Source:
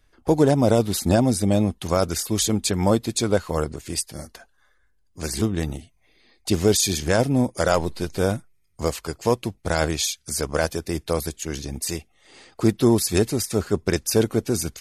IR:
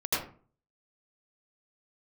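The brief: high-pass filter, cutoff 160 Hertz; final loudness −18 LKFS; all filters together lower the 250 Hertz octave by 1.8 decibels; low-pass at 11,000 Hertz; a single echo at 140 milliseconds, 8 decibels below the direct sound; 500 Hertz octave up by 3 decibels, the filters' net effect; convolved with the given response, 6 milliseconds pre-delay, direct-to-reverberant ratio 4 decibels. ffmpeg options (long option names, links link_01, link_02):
-filter_complex "[0:a]highpass=160,lowpass=11000,equalizer=frequency=250:width_type=o:gain=-3,equalizer=frequency=500:width_type=o:gain=4.5,aecho=1:1:140:0.398,asplit=2[link_01][link_02];[1:a]atrim=start_sample=2205,adelay=6[link_03];[link_02][link_03]afir=irnorm=-1:irlink=0,volume=-13.5dB[link_04];[link_01][link_04]amix=inputs=2:normalize=0,volume=2dB"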